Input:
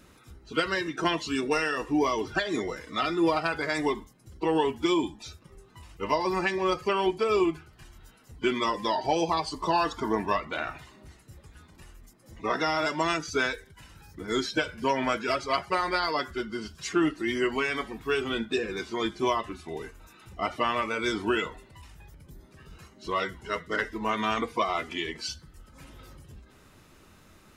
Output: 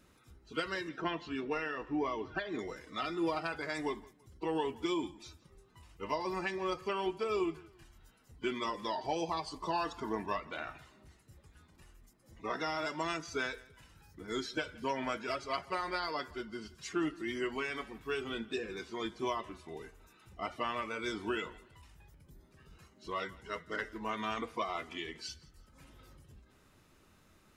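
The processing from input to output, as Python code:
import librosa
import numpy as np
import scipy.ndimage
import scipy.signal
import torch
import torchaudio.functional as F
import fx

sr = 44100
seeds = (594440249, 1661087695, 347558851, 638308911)

y = fx.lowpass(x, sr, hz=3000.0, slope=12, at=(0.89, 2.59))
y = fx.echo_feedback(y, sr, ms=168, feedback_pct=34, wet_db=-22.0)
y = y * 10.0 ** (-9.0 / 20.0)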